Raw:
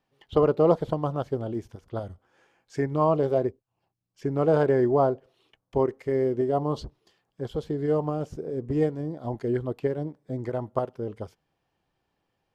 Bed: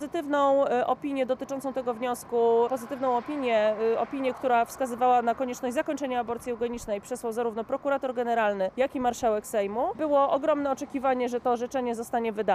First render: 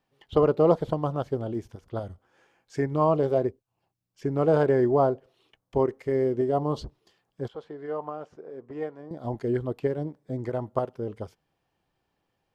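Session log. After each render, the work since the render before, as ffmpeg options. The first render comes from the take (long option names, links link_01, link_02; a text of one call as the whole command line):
ffmpeg -i in.wav -filter_complex "[0:a]asettb=1/sr,asplit=3[link_01][link_02][link_03];[link_01]atrim=end=7.484[link_04];[link_02]atrim=start=7.48:end=9.11,asetpts=PTS-STARTPTS,afade=type=in:duration=0.004:curve=qsin,afade=type=out:start_time=1.626:duration=0.004:curve=qsin,bandpass=frequency=1200:width_type=q:width=1[link_05];[link_03]atrim=start=9.106[link_06];[link_04][link_05]acrossfade=duration=0.004:curve1=hsin:curve2=qsin[link_07];[link_07][link_06]acrossfade=duration=0.004:curve1=qsin:curve2=hsin" out.wav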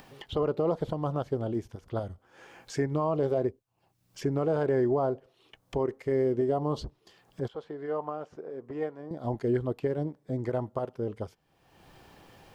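ffmpeg -i in.wav -af "acompressor=mode=upward:threshold=-35dB:ratio=2.5,alimiter=limit=-18dB:level=0:latency=1:release=91" out.wav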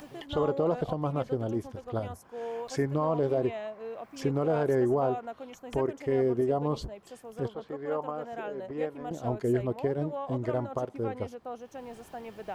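ffmpeg -i in.wav -i bed.wav -filter_complex "[1:a]volume=-14dB[link_01];[0:a][link_01]amix=inputs=2:normalize=0" out.wav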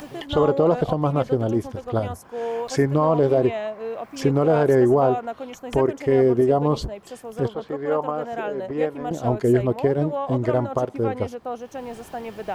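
ffmpeg -i in.wav -af "volume=9dB" out.wav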